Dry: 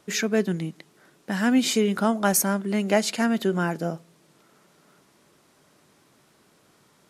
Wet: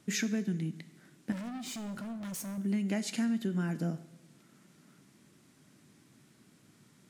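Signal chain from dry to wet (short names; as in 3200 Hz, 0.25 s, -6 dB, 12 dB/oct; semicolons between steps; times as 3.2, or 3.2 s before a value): graphic EQ 125/250/500/1000/2000/8000 Hz +9/+9/-5/-4/+3/+4 dB; compressor 6:1, threshold -23 dBFS, peak gain reduction 15 dB; 1.32–2.58 overloaded stage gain 32 dB; plate-style reverb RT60 0.93 s, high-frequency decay 1×, DRR 12 dB; gain -6.5 dB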